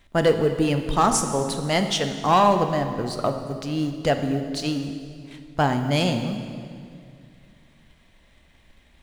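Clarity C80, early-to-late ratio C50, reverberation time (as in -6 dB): 8.5 dB, 7.5 dB, 2.2 s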